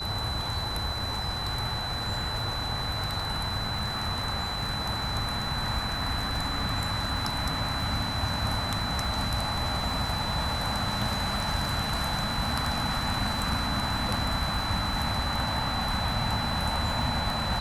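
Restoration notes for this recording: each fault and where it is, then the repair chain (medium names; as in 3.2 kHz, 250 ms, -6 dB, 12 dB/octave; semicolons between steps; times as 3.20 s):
crackle 28 per s -35 dBFS
whine 4 kHz -33 dBFS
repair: de-click; band-stop 4 kHz, Q 30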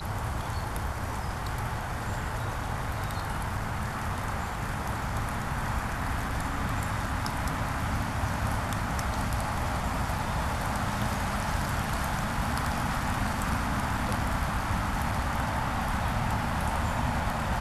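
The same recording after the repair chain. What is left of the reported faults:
nothing left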